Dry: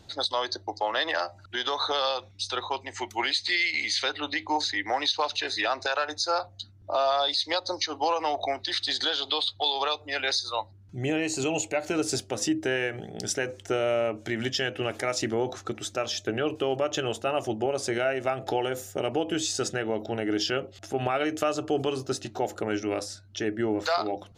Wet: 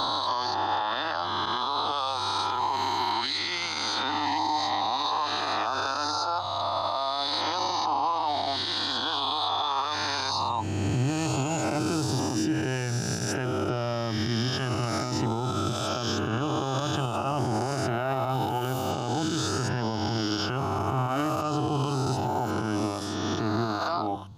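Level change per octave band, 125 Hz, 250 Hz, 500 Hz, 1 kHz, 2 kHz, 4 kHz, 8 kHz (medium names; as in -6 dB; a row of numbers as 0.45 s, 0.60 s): +10.0 dB, +2.5 dB, -3.5 dB, +4.5 dB, -3.5 dB, -1.0 dB, -1.5 dB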